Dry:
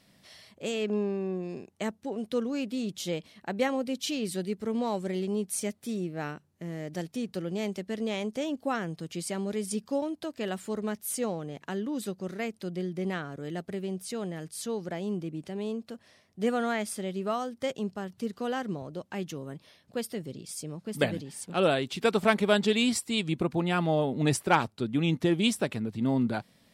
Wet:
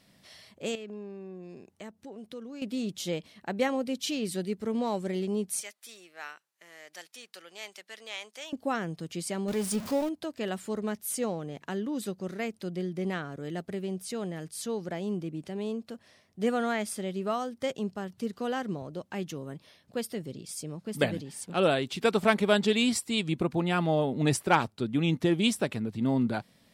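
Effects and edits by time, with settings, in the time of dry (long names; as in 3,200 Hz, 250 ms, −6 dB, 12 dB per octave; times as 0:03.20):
0:00.75–0:02.62: downward compressor 2 to 1, threshold −48 dBFS
0:05.61–0:08.53: high-pass filter 1,200 Hz
0:09.48–0:10.09: converter with a step at zero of −34.5 dBFS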